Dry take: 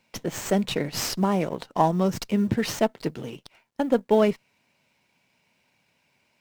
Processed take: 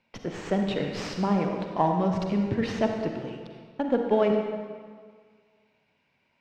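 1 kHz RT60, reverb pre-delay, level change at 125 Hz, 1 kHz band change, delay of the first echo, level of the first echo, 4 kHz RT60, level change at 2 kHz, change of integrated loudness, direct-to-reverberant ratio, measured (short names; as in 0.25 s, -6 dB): 1.9 s, 39 ms, -1.5 dB, -1.5 dB, none, none, 1.4 s, -2.5 dB, -2.5 dB, 3.0 dB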